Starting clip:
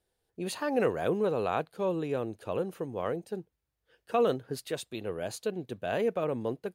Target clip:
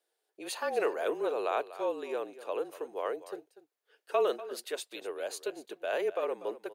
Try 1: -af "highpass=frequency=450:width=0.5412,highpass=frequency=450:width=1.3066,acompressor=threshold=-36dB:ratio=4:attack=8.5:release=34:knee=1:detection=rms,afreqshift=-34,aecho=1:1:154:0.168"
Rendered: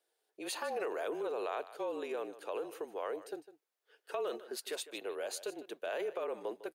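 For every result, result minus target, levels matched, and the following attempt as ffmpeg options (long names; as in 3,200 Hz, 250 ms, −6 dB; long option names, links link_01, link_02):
downward compressor: peak gain reduction +10.5 dB; echo 89 ms early
-af "highpass=frequency=450:width=0.5412,highpass=frequency=450:width=1.3066,afreqshift=-34,aecho=1:1:154:0.168"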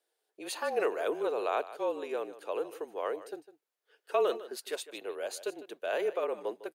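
echo 89 ms early
-af "highpass=frequency=450:width=0.5412,highpass=frequency=450:width=1.3066,afreqshift=-34,aecho=1:1:243:0.168"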